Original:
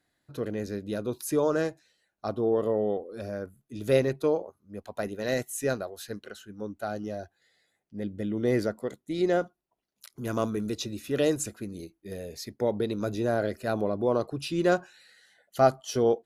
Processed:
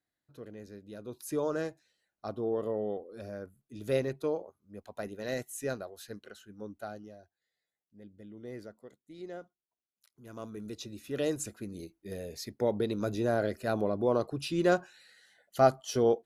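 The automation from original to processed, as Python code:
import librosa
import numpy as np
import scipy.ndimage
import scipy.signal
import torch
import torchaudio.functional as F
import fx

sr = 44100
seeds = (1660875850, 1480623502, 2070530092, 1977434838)

y = fx.gain(x, sr, db=fx.line((0.92, -14.0), (1.34, -6.5), (6.82, -6.5), (7.22, -18.0), (10.24, -18.0), (10.66, -10.0), (11.93, -2.0)))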